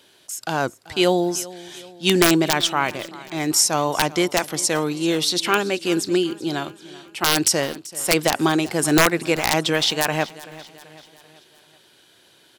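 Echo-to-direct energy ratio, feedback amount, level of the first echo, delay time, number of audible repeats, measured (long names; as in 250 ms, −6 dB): −17.5 dB, 51%, −19.0 dB, 385 ms, 3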